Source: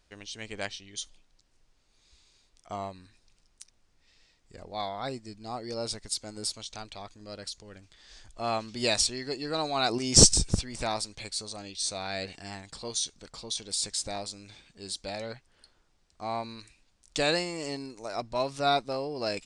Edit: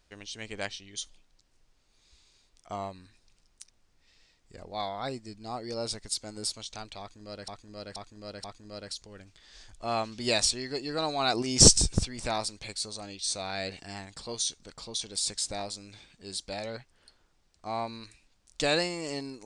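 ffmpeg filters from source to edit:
-filter_complex "[0:a]asplit=4[a][b][c][d];[a]atrim=end=7.482[e];[b]atrim=start=6.998:end=7.482[f];[c]atrim=start=6.998:end=7.482[g];[d]atrim=start=6.998[h];[e][f]acrossfade=d=0.004:c1=hsin:c2=hsin[i];[i][g]acrossfade=d=0.004:c1=hsin:c2=hsin[j];[j][h]acrossfade=d=0.004:c1=hsin:c2=hsin"

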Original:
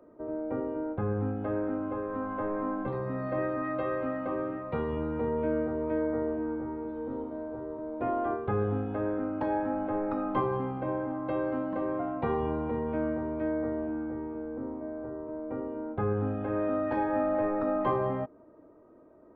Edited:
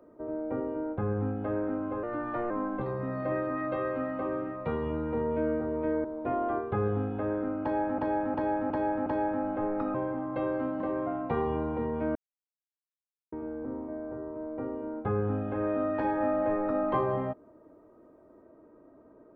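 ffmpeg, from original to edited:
-filter_complex "[0:a]asplit=11[a][b][c][d][e][f][g][h][i][j][k];[a]atrim=end=2.034[l];[b]atrim=start=2.03:end=2.57,asetpts=PTS-STARTPTS,asetrate=50274,aresample=44100,atrim=end_sample=20889,asetpts=PTS-STARTPTS[m];[c]atrim=start=2.566:end=6.112[n];[d]atrim=start=7.798:end=9.742[o];[e]atrim=start=9.378:end=9.742[p];[f]atrim=start=9.378:end=9.742[q];[g]atrim=start=9.378:end=9.742[r];[h]atrim=start=9.378:end=10.262[s];[i]atrim=start=10.868:end=13.08,asetpts=PTS-STARTPTS,afade=t=out:st=2.208:d=0.004:c=hsin[t];[j]atrim=start=13.08:end=14.25,asetpts=PTS-STARTPTS,volume=0[u];[k]atrim=start=14.25,asetpts=PTS-STARTPTS,afade=t=in:d=0.004:c=hsin[v];[l][m]acrossfade=d=0.004:c1=hsin:c2=hsin[w];[w][n]acrossfade=d=0.004:c1=hsin:c2=hsin[x];[x][o]acrossfade=d=0.004:c1=hsin:c2=hsin[y];[y][p]acrossfade=d=0.004:c1=hsin:c2=hsin[z];[z][q]acrossfade=d=0.004:c1=hsin:c2=hsin[aa];[aa][r]acrossfade=d=0.004:c1=hsin:c2=hsin[ab];[ab][s]acrossfade=d=0.004:c1=hsin:c2=hsin[ac];[t][u][v]concat=n=3:v=0:a=1[ad];[ac][ad]acrossfade=d=0.004:c1=hsin:c2=hsin"

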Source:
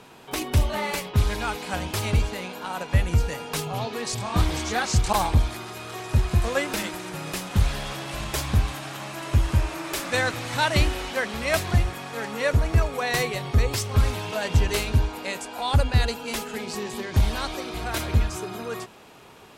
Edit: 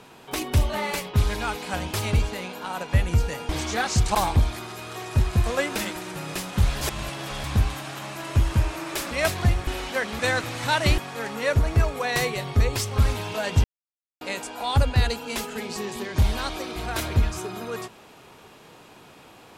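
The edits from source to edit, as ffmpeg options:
-filter_complex "[0:a]asplit=10[a][b][c][d][e][f][g][h][i][j];[a]atrim=end=3.492[k];[b]atrim=start=4.468:end=7.792[l];[c]atrim=start=7.788:end=8.422,asetpts=PTS-STARTPTS,areverse[m];[d]atrim=start=8.418:end=10.092[n];[e]atrim=start=11.398:end=11.962[o];[f]atrim=start=10.878:end=11.402[p];[g]atrim=start=10.088:end=10.882[q];[h]atrim=start=11.958:end=14.62,asetpts=PTS-STARTPTS,afade=t=out:st=2.658:d=0.004:c=hsin[r];[i]atrim=start=14.62:end=15.19,asetpts=PTS-STARTPTS,volume=0[s];[j]atrim=start=15.19,asetpts=PTS-STARTPTS,afade=t=in:d=0.004:c=hsin[t];[k][l]acrossfade=d=0.004:c1=hsin:c2=hsin[u];[u][m]acrossfade=d=0.004:c1=hsin:c2=hsin[v];[v][n]acrossfade=d=0.004:c1=hsin:c2=hsin[w];[w][o]acrossfade=d=0.004:c1=hsin:c2=hsin[x];[x][p]acrossfade=d=0.004:c1=hsin:c2=hsin[y];[y][q]acrossfade=d=0.004:c1=hsin:c2=hsin[z];[r][s][t]concat=n=3:v=0:a=1[aa];[z][aa]acrossfade=d=0.004:c1=hsin:c2=hsin"

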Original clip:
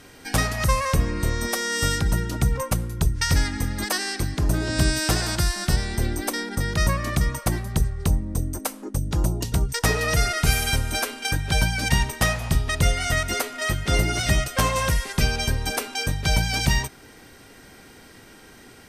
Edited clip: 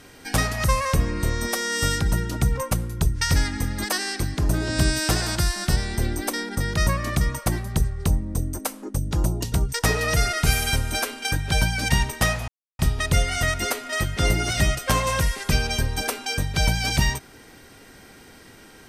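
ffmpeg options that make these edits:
-filter_complex "[0:a]asplit=2[a][b];[a]atrim=end=12.48,asetpts=PTS-STARTPTS,afade=t=out:st=12.476:d=0.004:c=hsin,apad=pad_dur=0.31[c];[b]atrim=start=12.48,asetpts=PTS-STARTPTS,afade=t=in:d=0.004:c=hsin[d];[c][d]concat=n=2:v=0:a=1"

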